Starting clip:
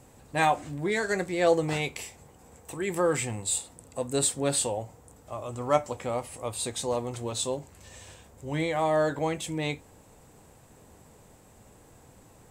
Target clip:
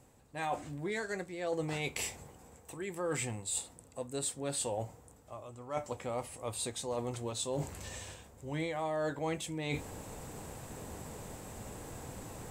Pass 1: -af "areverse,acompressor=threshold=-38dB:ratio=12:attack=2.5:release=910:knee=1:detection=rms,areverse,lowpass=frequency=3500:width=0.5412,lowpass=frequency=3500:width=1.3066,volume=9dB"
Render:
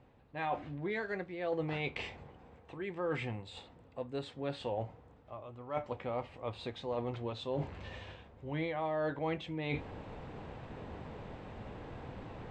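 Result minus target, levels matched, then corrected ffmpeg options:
4,000 Hz band −2.5 dB
-af "areverse,acompressor=threshold=-38dB:ratio=12:attack=2.5:release=910:knee=1:detection=rms,areverse,volume=9dB"

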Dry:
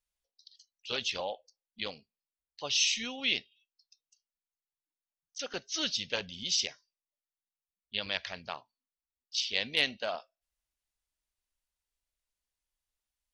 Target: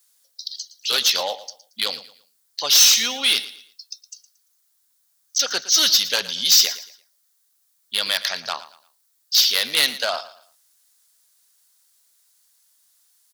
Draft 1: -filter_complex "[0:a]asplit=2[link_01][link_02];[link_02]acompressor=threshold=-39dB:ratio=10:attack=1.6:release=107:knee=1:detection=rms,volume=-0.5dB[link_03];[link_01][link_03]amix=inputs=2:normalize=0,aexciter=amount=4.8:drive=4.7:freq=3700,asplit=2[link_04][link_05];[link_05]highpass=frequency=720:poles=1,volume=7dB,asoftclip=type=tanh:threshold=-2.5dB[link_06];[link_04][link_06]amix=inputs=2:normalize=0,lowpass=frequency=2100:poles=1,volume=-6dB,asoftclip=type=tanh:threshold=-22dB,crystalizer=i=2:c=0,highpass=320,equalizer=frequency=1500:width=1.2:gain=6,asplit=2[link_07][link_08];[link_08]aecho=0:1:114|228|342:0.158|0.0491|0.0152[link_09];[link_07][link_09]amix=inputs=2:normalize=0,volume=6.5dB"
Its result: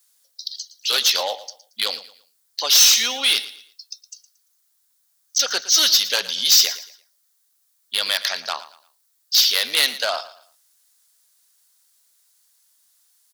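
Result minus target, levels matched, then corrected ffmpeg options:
125 Hz band −8.0 dB; downward compressor: peak gain reduction −7 dB
-filter_complex "[0:a]asplit=2[link_01][link_02];[link_02]acompressor=threshold=-47dB:ratio=10:attack=1.6:release=107:knee=1:detection=rms,volume=-0.5dB[link_03];[link_01][link_03]amix=inputs=2:normalize=0,aexciter=amount=4.8:drive=4.7:freq=3700,asplit=2[link_04][link_05];[link_05]highpass=frequency=720:poles=1,volume=7dB,asoftclip=type=tanh:threshold=-2.5dB[link_06];[link_04][link_06]amix=inputs=2:normalize=0,lowpass=frequency=2100:poles=1,volume=-6dB,asoftclip=type=tanh:threshold=-22dB,crystalizer=i=2:c=0,highpass=160,equalizer=frequency=1500:width=1.2:gain=6,asplit=2[link_07][link_08];[link_08]aecho=0:1:114|228|342:0.158|0.0491|0.0152[link_09];[link_07][link_09]amix=inputs=2:normalize=0,volume=6.5dB"

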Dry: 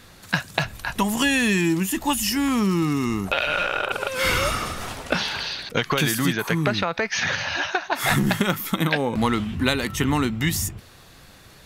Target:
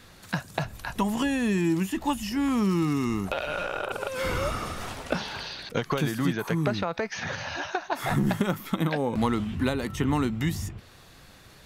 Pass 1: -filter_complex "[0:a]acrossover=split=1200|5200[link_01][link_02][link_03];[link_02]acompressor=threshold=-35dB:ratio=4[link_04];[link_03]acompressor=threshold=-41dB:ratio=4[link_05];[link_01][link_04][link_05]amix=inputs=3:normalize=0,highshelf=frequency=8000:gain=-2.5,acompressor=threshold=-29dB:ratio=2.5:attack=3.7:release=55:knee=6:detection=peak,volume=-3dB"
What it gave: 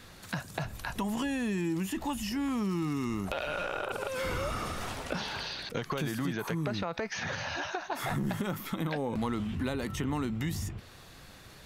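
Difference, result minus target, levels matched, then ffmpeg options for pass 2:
downward compressor: peak gain reduction +10 dB
-filter_complex "[0:a]acrossover=split=1200|5200[link_01][link_02][link_03];[link_02]acompressor=threshold=-35dB:ratio=4[link_04];[link_03]acompressor=threshold=-41dB:ratio=4[link_05];[link_01][link_04][link_05]amix=inputs=3:normalize=0,highshelf=frequency=8000:gain=-2.5,volume=-3dB"

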